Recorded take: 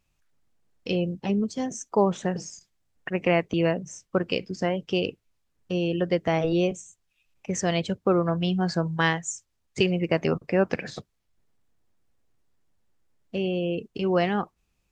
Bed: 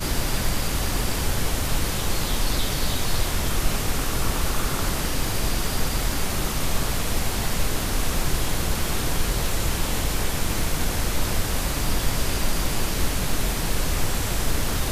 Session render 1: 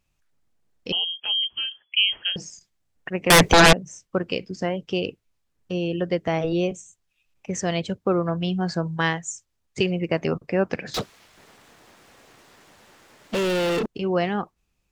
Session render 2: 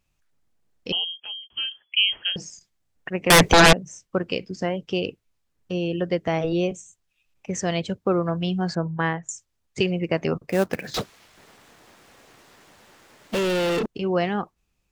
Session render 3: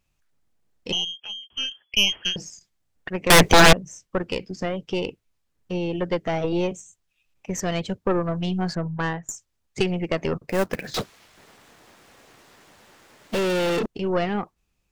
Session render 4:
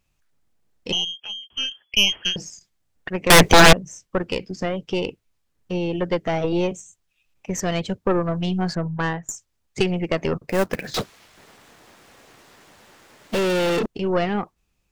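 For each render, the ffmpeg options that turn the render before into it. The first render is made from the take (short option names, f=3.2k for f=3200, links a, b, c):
-filter_complex "[0:a]asettb=1/sr,asplit=3[a][b][c];[a]atrim=end=0.924[d];[b]atrim=start=0.92:end=2.36,asetpts=PTS-STARTPTS,afade=t=in:d=0.004:c=qsin,afade=t=out:st=1.436:d=0.004:c=qsin,lowpass=f=2.9k:t=q:w=0.5098,lowpass=f=2.9k:t=q:w=0.6013,lowpass=f=2.9k:t=q:w=0.9,lowpass=f=2.9k:t=q:w=2.563,afreqshift=-3400[e];[c]atrim=start=2.356[f];[d][e]acrossfade=d=0.004:c1=hsin:c2=qsin[g];[g][f]acrossfade=d=0.004:c1=qsin:c2=hsin,asettb=1/sr,asplit=3[h][i][j];[h]atrim=end=3.304[k];[i]atrim=start=3.3:end=3.73,asetpts=PTS-STARTPTS,afade=t=in:d=0.004:c=qsin,afade=t=out:st=0.426:d=0.004:c=qsin,aeval=exprs='0.376*sin(PI/2*8.91*val(0)/0.376)':c=same[l];[j]atrim=start=3.726[m];[k][l]acrossfade=d=0.004:c1=hsin:c2=qsin[n];[n][m]acrossfade=d=0.004:c1=qsin:c2=hsin,asettb=1/sr,asplit=3[o][p][q];[o]atrim=end=10.944[r];[p]atrim=start=10.94:end=13.86,asetpts=PTS-STARTPTS,afade=t=in:d=0.004:c=qsin,afade=t=out:st=2.916:d=0.004:c=qsin,asplit=2[s][t];[t]highpass=f=720:p=1,volume=40dB,asoftclip=type=tanh:threshold=-17dB[u];[s][u]amix=inputs=2:normalize=0,lowpass=f=3.7k:p=1,volume=-6dB[v];[q]atrim=start=13.856[w];[r][v]acrossfade=d=0.004:c1=hsin:c2=qsin[x];[x][w]acrossfade=d=0.004:c1=qsin:c2=hsin"
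-filter_complex "[0:a]asettb=1/sr,asplit=3[a][b][c];[a]atrim=end=8.754[d];[b]atrim=start=8.75:end=9.29,asetpts=PTS-STARTPTS,afade=t=in:d=0.004:c=qsin,afade=t=out:st=0.536:d=0.004:c=qsin,lowpass=1.8k[e];[c]atrim=start=9.286[f];[d][e]acrossfade=d=0.004:c1=hsin:c2=qsin[g];[g][f]acrossfade=d=0.004:c1=qsin:c2=hsin,asettb=1/sr,asplit=3[h][i][j];[h]atrim=end=10.494[k];[i]atrim=start=10.49:end=13.39,asetpts=PTS-STARTPTS,afade=t=in:d=0.004:c=qsin,afade=t=out:st=2.896:d=0.004:c=qsin,acrusher=bits=4:mode=log:mix=0:aa=0.000001[l];[j]atrim=start=13.386[m];[k][l]acrossfade=d=0.004:c1=hsin:c2=qsin[n];[n][m]acrossfade=d=0.004:c1=qsin:c2=hsin,asplit=2[o][p];[o]atrim=end=1.5,asetpts=PTS-STARTPTS,afade=t=out:st=0.93:d=0.57[q];[p]atrim=start=1.5,asetpts=PTS-STARTPTS,afade=t=in:d=0.004:c=hsin[r];[q][r]concat=n=2:v=0:a=1"
-af "aeval=exprs='0.422*(cos(1*acos(clip(val(0)/0.422,-1,1)))-cos(1*PI/2))+0.0668*(cos(4*acos(clip(val(0)/0.422,-1,1)))-cos(4*PI/2))':c=same"
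-af "volume=2dB"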